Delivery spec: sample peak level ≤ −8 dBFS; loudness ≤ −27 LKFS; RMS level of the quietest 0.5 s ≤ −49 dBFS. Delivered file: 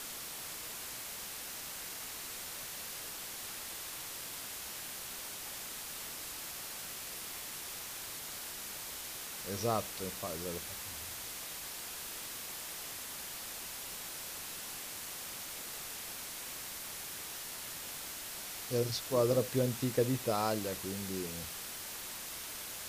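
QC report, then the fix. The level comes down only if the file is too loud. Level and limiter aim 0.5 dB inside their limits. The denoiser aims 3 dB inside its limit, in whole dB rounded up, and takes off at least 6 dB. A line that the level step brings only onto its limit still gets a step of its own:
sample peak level −17.5 dBFS: in spec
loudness −38.5 LKFS: in spec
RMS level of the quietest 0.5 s −44 dBFS: out of spec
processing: broadband denoise 8 dB, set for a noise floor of −44 dBFS

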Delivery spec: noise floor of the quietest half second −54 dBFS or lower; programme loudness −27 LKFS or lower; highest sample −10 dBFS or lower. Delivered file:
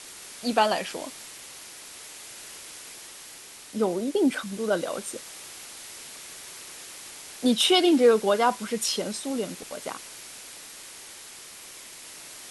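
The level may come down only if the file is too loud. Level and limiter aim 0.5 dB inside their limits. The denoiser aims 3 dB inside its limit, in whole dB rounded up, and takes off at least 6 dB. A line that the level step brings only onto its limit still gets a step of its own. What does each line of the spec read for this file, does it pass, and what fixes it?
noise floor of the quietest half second −45 dBFS: out of spec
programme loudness −25.0 LKFS: out of spec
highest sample −7.5 dBFS: out of spec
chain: broadband denoise 10 dB, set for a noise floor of −45 dBFS
level −2.5 dB
brickwall limiter −10.5 dBFS

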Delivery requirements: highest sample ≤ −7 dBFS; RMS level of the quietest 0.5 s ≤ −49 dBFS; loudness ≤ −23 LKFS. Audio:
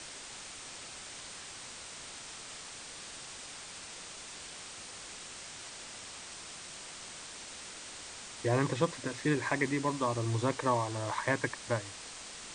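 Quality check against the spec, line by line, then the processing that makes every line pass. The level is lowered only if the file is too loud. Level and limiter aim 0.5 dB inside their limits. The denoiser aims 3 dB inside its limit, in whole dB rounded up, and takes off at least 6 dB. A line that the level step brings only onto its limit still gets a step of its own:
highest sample −15.0 dBFS: in spec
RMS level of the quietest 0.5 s −46 dBFS: out of spec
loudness −37.0 LKFS: in spec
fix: broadband denoise 6 dB, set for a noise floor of −46 dBFS

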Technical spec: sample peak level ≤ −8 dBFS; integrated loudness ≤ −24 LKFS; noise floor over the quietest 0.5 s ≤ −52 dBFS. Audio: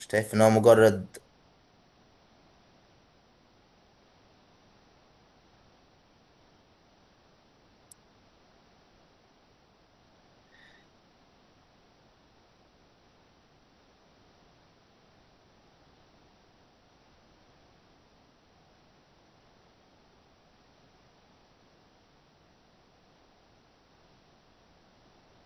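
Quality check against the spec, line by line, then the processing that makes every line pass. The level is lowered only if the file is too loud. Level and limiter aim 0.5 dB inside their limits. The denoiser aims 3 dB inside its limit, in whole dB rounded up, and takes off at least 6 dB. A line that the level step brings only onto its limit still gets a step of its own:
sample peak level −6.0 dBFS: out of spec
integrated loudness −21.5 LKFS: out of spec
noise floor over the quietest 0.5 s −63 dBFS: in spec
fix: level −3 dB

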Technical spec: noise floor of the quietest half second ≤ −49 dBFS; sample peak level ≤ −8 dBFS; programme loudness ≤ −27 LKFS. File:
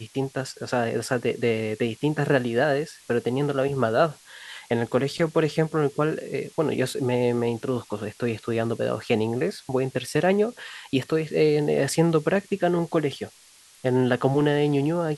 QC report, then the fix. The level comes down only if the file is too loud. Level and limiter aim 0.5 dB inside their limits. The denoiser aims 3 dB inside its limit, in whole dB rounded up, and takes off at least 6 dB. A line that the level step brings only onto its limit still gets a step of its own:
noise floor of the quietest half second −53 dBFS: in spec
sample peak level −6.0 dBFS: out of spec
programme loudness −24.5 LKFS: out of spec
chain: level −3 dB

